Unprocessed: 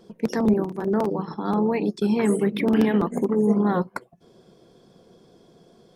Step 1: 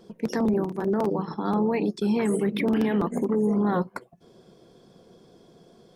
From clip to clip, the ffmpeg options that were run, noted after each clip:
-af "alimiter=limit=-16.5dB:level=0:latency=1:release=14"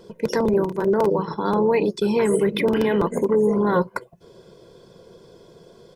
-af "aecho=1:1:2:0.53,volume=5dB"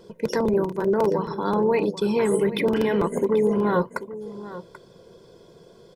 -af "aecho=1:1:786:0.178,volume=-2dB"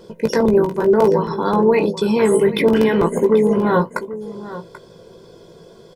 -filter_complex "[0:a]asplit=2[a][b];[b]adelay=18,volume=-7dB[c];[a][c]amix=inputs=2:normalize=0,volume=5.5dB"

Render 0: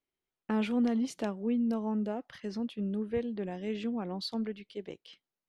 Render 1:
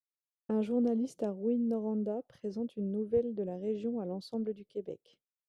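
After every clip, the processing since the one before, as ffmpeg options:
-af "agate=range=-33dB:threshold=-55dB:ratio=3:detection=peak,equalizer=f=125:t=o:w=1:g=7,equalizer=f=500:t=o:w=1:g=11,equalizer=f=1k:t=o:w=1:g=-5,equalizer=f=2k:t=o:w=1:g=-11,equalizer=f=4k:t=o:w=1:g=-6,volume=-5.5dB"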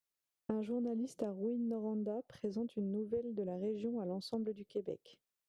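-af "acompressor=threshold=-40dB:ratio=6,volume=4.5dB"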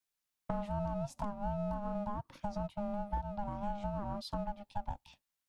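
-filter_complex "[0:a]aeval=exprs='val(0)*sin(2*PI*410*n/s)':c=same,acrossover=split=320|690|4300[a][b][c][d];[b]aeval=exprs='max(val(0),0)':c=same[e];[a][e][c][d]amix=inputs=4:normalize=0,volume=5dB"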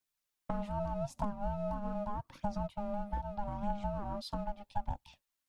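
-af "aphaser=in_gain=1:out_gain=1:delay=4.5:decay=0.35:speed=0.81:type=triangular"

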